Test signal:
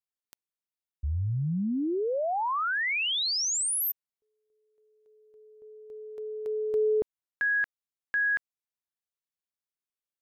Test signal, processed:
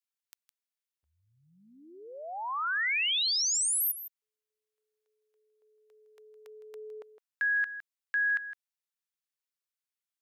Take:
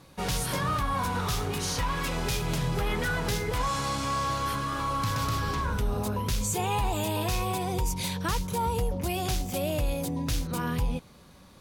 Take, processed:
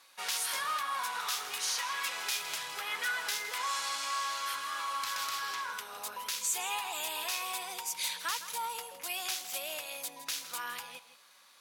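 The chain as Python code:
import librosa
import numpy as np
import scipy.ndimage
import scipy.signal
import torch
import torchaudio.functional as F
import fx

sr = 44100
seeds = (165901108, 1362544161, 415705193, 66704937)

y = scipy.signal.sosfilt(scipy.signal.butter(2, 1300.0, 'highpass', fs=sr, output='sos'), x)
y = y + 10.0 ** (-13.0 / 20.0) * np.pad(y, (int(161 * sr / 1000.0), 0))[:len(y)]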